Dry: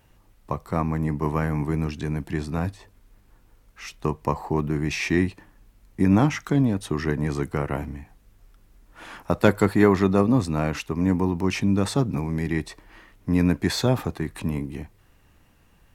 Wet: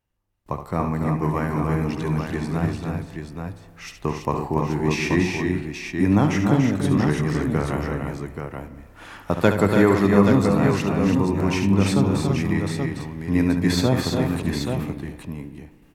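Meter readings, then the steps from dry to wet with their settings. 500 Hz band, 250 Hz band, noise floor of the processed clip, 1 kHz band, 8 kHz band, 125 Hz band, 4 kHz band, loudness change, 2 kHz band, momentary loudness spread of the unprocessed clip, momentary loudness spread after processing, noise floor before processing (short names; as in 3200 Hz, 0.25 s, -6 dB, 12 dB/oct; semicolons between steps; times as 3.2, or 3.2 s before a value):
+3.0 dB, +3.0 dB, -49 dBFS, +3.0 dB, +2.5 dB, +3.0 dB, +3.0 dB, +2.5 dB, +3.0 dB, 13 LU, 16 LU, -58 dBFS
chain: gate with hold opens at -46 dBFS; on a send: tapped delay 71/287/331/830 ms -9/-6/-6/-6 dB; on the sum: spring tank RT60 1.8 s, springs 30/59 ms, chirp 80 ms, DRR 13 dB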